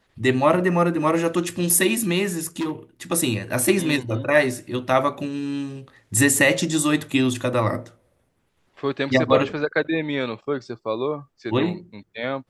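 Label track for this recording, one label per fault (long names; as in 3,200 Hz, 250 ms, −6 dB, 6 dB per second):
2.590000	2.720000	clipping −21.5 dBFS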